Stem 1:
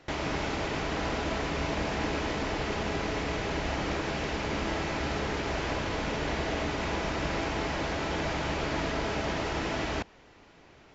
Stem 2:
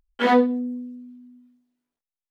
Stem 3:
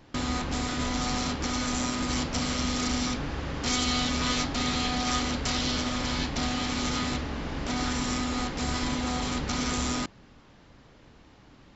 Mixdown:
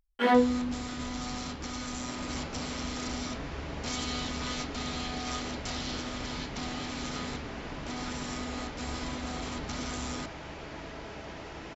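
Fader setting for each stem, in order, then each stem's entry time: -11.5 dB, -5.0 dB, -8.0 dB; 2.00 s, 0.00 s, 0.20 s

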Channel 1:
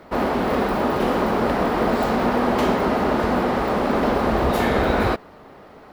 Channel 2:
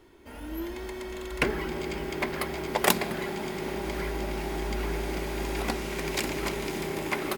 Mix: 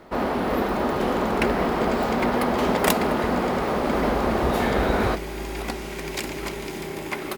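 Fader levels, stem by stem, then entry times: -3.0 dB, 0.0 dB; 0.00 s, 0.00 s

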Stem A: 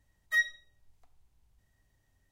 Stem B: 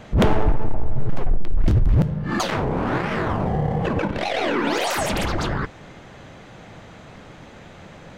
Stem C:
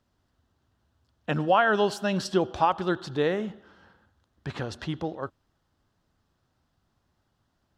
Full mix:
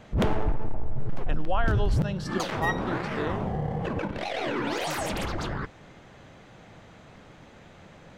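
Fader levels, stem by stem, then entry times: -3.5 dB, -7.5 dB, -8.0 dB; 2.30 s, 0.00 s, 0.00 s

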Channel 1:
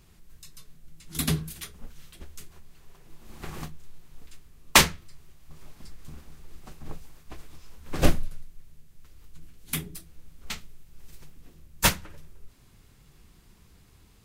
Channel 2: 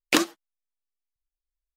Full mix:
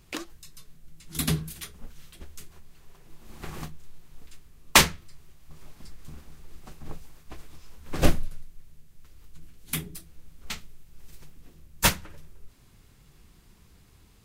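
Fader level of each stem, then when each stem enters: 0.0 dB, -14.5 dB; 0.00 s, 0.00 s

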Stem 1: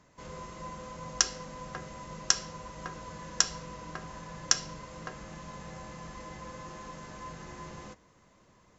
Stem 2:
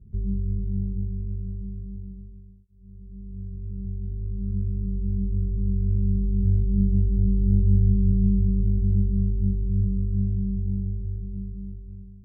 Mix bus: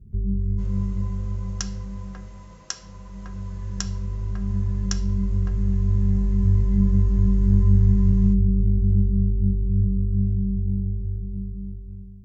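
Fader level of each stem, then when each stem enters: -6.5 dB, +2.5 dB; 0.40 s, 0.00 s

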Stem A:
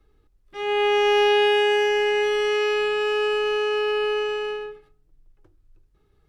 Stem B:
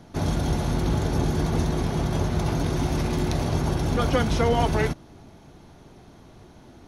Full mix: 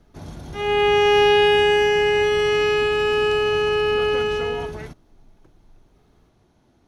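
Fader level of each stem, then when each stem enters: +3.0 dB, -12.0 dB; 0.00 s, 0.00 s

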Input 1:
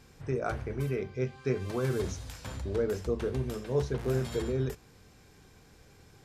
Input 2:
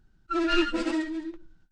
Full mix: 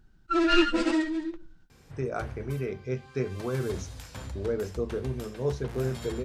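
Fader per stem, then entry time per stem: 0.0 dB, +2.5 dB; 1.70 s, 0.00 s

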